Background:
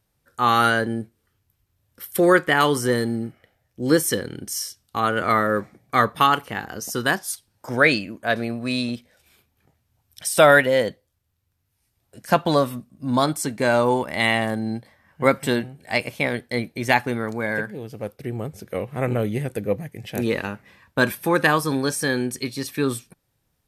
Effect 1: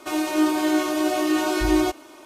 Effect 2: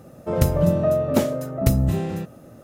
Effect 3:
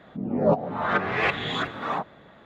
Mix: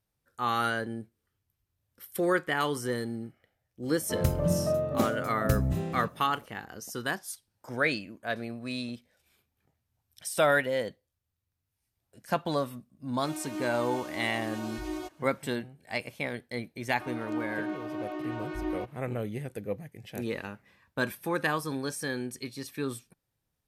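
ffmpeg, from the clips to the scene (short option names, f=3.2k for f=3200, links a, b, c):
-filter_complex "[1:a]asplit=2[a][b];[0:a]volume=-10.5dB[c];[b]lowpass=2.2k[d];[2:a]atrim=end=2.63,asetpts=PTS-STARTPTS,volume=-8dB,afade=t=in:d=0.004:c=hsin,afade=t=out:st=2.626:d=0.004:c=hsin,adelay=3830[e];[a]atrim=end=2.25,asetpts=PTS-STARTPTS,volume=-16.5dB,afade=t=in:d=0.004:c=hsin,afade=t=out:st=2.246:d=0.004:c=hsin,adelay=13170[f];[d]atrim=end=2.25,asetpts=PTS-STARTPTS,volume=-13.5dB,afade=t=in:d=0.004:c=hsin,afade=t=out:st=2.246:d=0.004:c=hsin,adelay=16940[g];[c][e][f][g]amix=inputs=4:normalize=0"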